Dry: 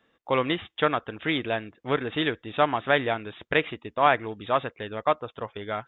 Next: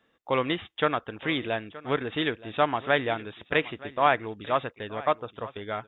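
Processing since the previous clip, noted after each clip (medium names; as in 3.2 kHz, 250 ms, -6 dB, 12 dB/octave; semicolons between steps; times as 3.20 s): delay 922 ms -18.5 dB; trim -1.5 dB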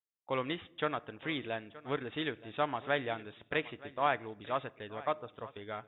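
expander -43 dBFS; on a send at -19.5 dB: reverberation RT60 0.95 s, pre-delay 7 ms; on the sum: trim -8.5 dB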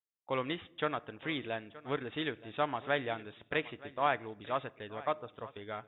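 no audible change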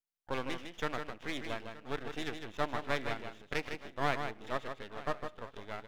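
half-wave rectifier; delay 155 ms -7 dB; trim +1 dB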